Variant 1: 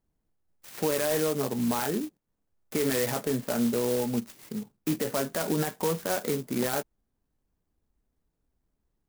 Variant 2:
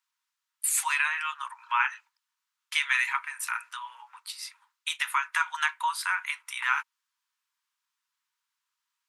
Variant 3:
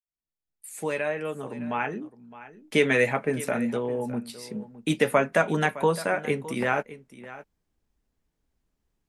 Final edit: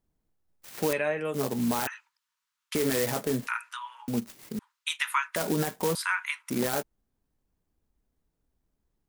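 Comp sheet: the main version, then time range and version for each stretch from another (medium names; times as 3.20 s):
1
0.93–1.34 s: from 3
1.87–2.75 s: from 2
3.47–4.08 s: from 2
4.59–5.36 s: from 2
5.95–6.50 s: from 2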